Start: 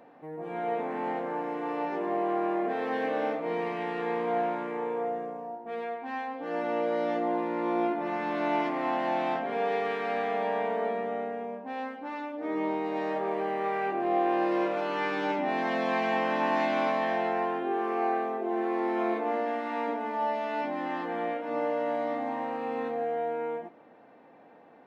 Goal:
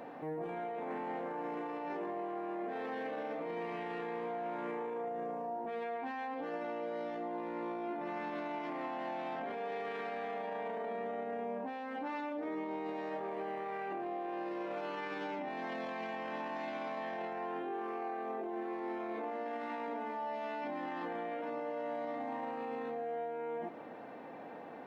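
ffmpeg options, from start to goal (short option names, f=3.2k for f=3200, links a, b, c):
-af "acompressor=threshold=-38dB:ratio=5,alimiter=level_in=15.5dB:limit=-24dB:level=0:latency=1:release=19,volume=-15.5dB,volume=7dB"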